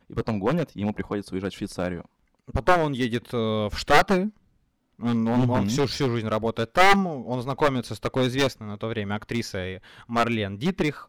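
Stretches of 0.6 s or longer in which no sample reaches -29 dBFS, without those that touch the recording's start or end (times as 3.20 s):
4.28–5.02 s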